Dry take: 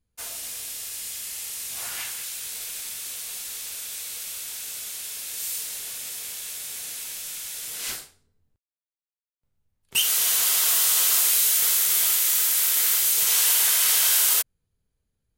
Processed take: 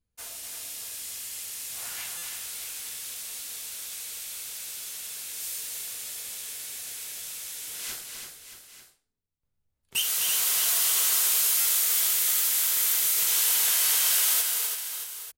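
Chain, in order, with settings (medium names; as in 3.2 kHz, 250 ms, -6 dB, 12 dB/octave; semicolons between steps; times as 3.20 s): multi-tap echo 253/335/626/841/894 ms -7/-6.5/-11.5/-18.5/-15.5 dB; buffer glitch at 2.17/11.60 s, samples 256, times 8; trim -5 dB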